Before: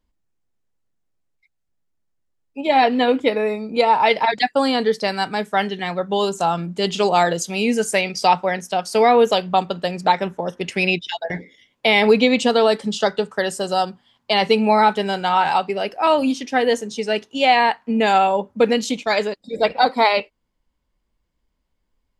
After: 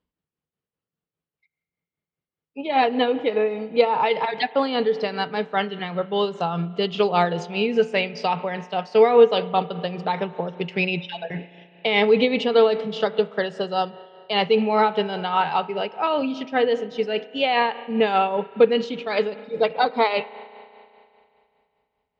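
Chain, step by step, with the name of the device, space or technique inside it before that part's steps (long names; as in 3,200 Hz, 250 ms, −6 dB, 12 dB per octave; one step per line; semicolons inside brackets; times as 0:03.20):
combo amplifier with spring reverb and tremolo (spring reverb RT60 2.6 s, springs 34 ms, chirp 40 ms, DRR 15.5 dB; amplitude tremolo 5 Hz, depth 50%; loudspeaker in its box 78–4,400 Hz, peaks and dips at 160 Hz +9 dB, 450 Hz +7 dB, 1,200 Hz +4 dB, 2,900 Hz +4 dB)
level −4 dB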